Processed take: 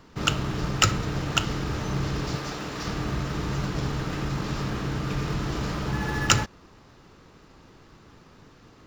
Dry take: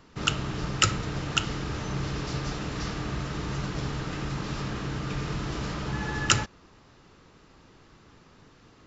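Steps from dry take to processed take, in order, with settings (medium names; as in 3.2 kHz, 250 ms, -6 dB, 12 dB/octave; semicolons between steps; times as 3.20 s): in parallel at -12 dB: sample-and-hold 12×; 2.35–2.86 s: on the sum: bass shelf 180 Hz -11.5 dB; trim +1.5 dB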